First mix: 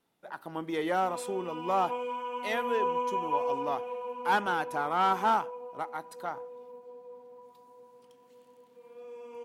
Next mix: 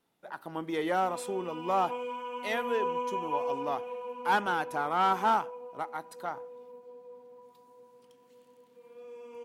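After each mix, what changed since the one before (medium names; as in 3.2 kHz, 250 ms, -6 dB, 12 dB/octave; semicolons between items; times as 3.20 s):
background: add peaking EQ 790 Hz -4 dB 0.98 oct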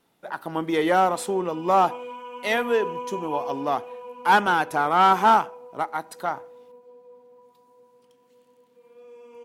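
speech +9.0 dB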